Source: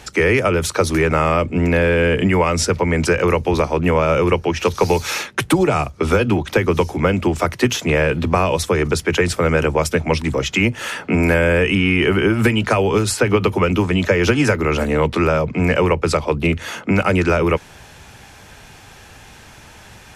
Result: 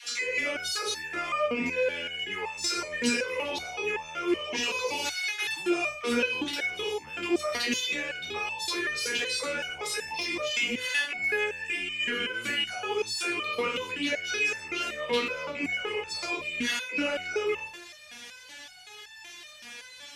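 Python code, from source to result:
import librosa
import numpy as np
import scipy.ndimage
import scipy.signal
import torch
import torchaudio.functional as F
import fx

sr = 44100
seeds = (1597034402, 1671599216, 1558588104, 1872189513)

p1 = fx.spec_trails(x, sr, decay_s=0.49)
p2 = fx.weighting(p1, sr, curve='D')
p3 = fx.over_compress(p2, sr, threshold_db=-17.0, ratio=-0.5)
p4 = p2 + F.gain(torch.from_numpy(p3), -1.0).numpy()
p5 = fx.cheby_harmonics(p4, sr, harmonics=(5,), levels_db=(-19,), full_scale_db=8.5)
p6 = fx.dispersion(p5, sr, late='lows', ms=70.0, hz=400.0)
p7 = fx.resonator_held(p6, sr, hz=5.3, low_hz=240.0, high_hz=880.0)
y = F.gain(torch.from_numpy(p7), -8.0).numpy()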